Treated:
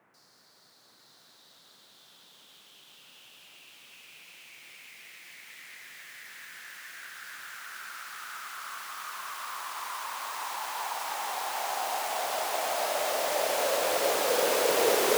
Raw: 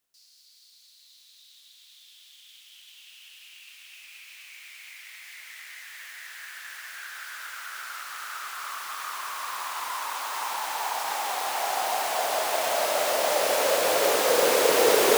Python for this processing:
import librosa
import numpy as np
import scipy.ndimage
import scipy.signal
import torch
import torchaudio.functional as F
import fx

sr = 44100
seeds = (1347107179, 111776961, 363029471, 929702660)

p1 = fx.dmg_noise_band(x, sr, seeds[0], low_hz=120.0, high_hz=1800.0, level_db=-61.0)
p2 = p1 + fx.echo_single(p1, sr, ms=855, db=-3.5, dry=0)
y = p2 * librosa.db_to_amplitude(-5.5)